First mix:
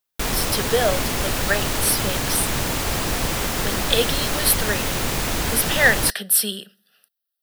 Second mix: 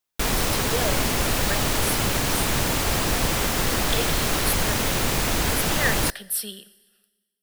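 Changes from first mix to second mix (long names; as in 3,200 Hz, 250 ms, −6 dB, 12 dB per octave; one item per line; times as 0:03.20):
speech −11.5 dB
reverb: on, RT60 1.4 s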